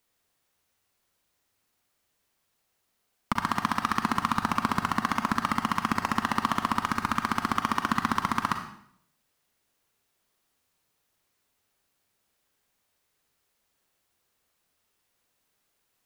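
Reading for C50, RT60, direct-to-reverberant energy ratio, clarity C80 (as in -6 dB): 7.0 dB, 0.65 s, 5.5 dB, 10.0 dB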